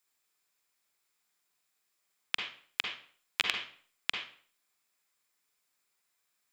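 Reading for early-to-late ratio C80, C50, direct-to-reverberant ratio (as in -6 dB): 8.0 dB, 3.5 dB, 2.0 dB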